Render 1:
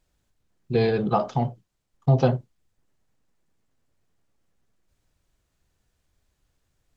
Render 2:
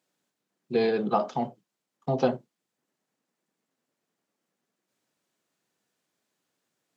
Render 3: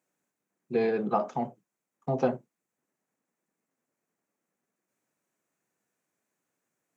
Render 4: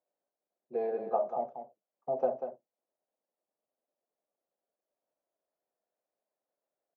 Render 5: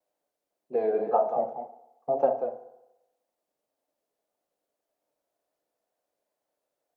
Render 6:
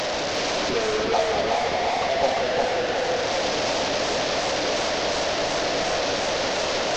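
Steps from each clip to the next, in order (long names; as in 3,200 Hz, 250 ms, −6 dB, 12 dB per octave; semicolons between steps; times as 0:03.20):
high-pass filter 190 Hz 24 dB per octave; level −2 dB
flat-topped bell 3,900 Hz −9 dB 1 octave; level −2 dB
resonant band-pass 620 Hz, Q 3.4; single-tap delay 191 ms −8.5 dB; level +1.5 dB
pitch vibrato 1.9 Hz 74 cents; feedback delay network reverb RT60 0.94 s, low-frequency decay 0.75×, high-frequency decay 0.6×, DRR 9 dB; level +6 dB
linear delta modulator 32 kbit/s, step −19.5 dBFS; feedback echo with a swinging delay time 354 ms, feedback 47%, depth 110 cents, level −4 dB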